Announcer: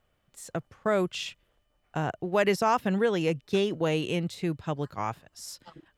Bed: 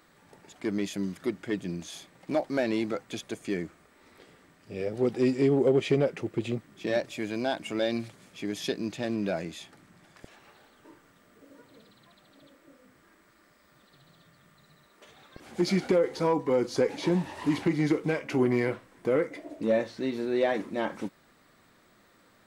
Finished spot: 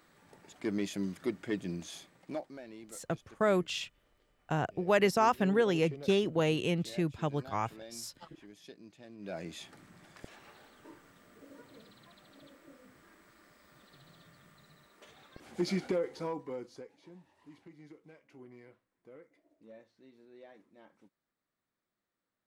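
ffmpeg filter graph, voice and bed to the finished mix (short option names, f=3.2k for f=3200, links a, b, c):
-filter_complex "[0:a]adelay=2550,volume=-2dB[a];[1:a]volume=17.5dB,afade=t=out:st=1.93:d=0.66:silence=0.133352,afade=t=in:st=9.18:d=0.59:silence=0.0891251,afade=t=out:st=14.32:d=2.58:silence=0.0375837[b];[a][b]amix=inputs=2:normalize=0"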